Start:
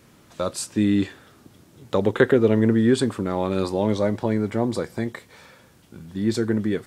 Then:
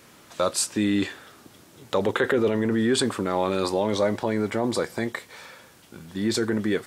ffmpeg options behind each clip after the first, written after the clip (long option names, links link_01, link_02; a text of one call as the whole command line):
ffmpeg -i in.wav -af "alimiter=limit=-14.5dB:level=0:latency=1:release=12,lowshelf=frequency=300:gain=-11.5,volume=5.5dB" out.wav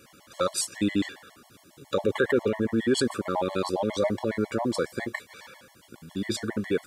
ffmpeg -i in.wav -af "afftfilt=real='re*gt(sin(2*PI*7.3*pts/sr)*(1-2*mod(floor(b*sr/1024/570),2)),0)':imag='im*gt(sin(2*PI*7.3*pts/sr)*(1-2*mod(floor(b*sr/1024/570),2)),0)':win_size=1024:overlap=0.75" out.wav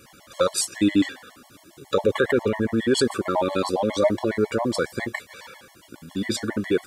ffmpeg -i in.wav -af "flanger=delay=0.9:depth=3.2:regen=60:speed=0.4:shape=triangular,volume=8.5dB" out.wav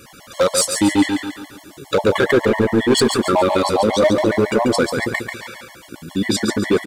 ffmpeg -i in.wav -af "asoftclip=type=hard:threshold=-17dB,aecho=1:1:140|280|420|560|700:0.501|0.21|0.0884|0.0371|0.0156,volume=7dB" out.wav